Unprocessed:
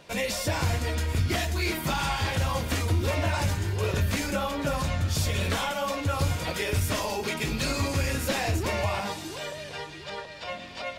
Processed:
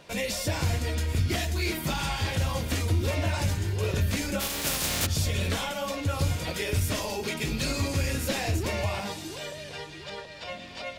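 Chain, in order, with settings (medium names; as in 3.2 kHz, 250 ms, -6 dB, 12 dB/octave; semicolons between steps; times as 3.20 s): 4.39–5.05 s: spectral contrast reduction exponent 0.33; dynamic bell 1.1 kHz, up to -5 dB, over -45 dBFS, Q 0.87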